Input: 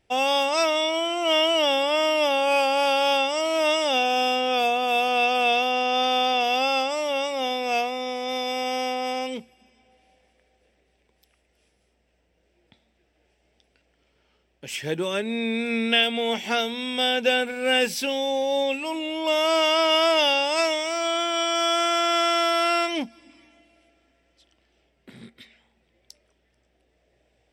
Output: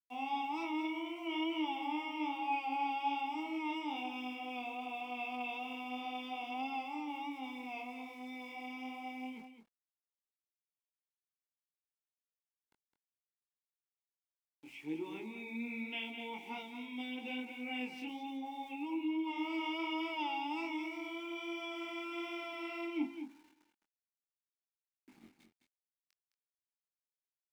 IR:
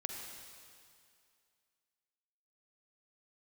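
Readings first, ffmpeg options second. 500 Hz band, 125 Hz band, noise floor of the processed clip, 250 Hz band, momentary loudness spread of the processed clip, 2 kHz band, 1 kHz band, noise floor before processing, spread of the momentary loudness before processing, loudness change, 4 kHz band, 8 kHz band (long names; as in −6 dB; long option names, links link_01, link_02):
−25.5 dB, −19.0 dB, below −85 dBFS, −8.5 dB, 8 LU, −17.0 dB, −15.5 dB, −69 dBFS, 7 LU, −17.5 dB, −23.0 dB, below −30 dB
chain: -filter_complex "[0:a]asplit=3[link_01][link_02][link_03];[link_01]bandpass=frequency=300:width_type=q:width=8,volume=0dB[link_04];[link_02]bandpass=frequency=870:width_type=q:width=8,volume=-6dB[link_05];[link_03]bandpass=frequency=2240:width_type=q:width=8,volume=-9dB[link_06];[link_04][link_05][link_06]amix=inputs=3:normalize=0,bandreject=frequency=68.86:width_type=h:width=4,bandreject=frequency=137.72:width_type=h:width=4,bandreject=frequency=206.58:width_type=h:width=4,bandreject=frequency=275.44:width_type=h:width=4,bandreject=frequency=344.3:width_type=h:width=4,bandreject=frequency=413.16:width_type=h:width=4,bandreject=frequency=482.02:width_type=h:width=4,bandreject=frequency=550.88:width_type=h:width=4,bandreject=frequency=619.74:width_type=h:width=4,bandreject=frequency=688.6:width_type=h:width=4,bandreject=frequency=757.46:width_type=h:width=4,bandreject=frequency=826.32:width_type=h:width=4,bandreject=frequency=895.18:width_type=h:width=4,bandreject=frequency=964.04:width_type=h:width=4,bandreject=frequency=1032.9:width_type=h:width=4,aeval=exprs='val(0)*gte(abs(val(0)),0.00141)':channel_layout=same,flanger=delay=19:depth=5.3:speed=1.2,aecho=1:1:211:0.355"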